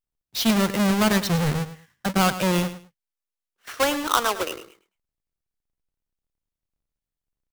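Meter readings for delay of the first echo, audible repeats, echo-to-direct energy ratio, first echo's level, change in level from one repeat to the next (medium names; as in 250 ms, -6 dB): 106 ms, 2, -13.0 dB, -13.0 dB, -13.5 dB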